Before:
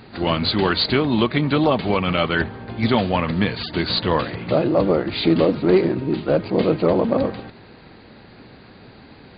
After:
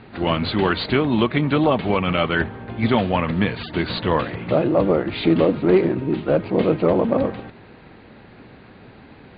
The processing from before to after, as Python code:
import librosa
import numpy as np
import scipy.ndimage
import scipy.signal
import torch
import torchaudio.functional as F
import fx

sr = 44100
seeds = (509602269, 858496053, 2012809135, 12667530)

y = scipy.signal.sosfilt(scipy.signal.butter(4, 3400.0, 'lowpass', fs=sr, output='sos'), x)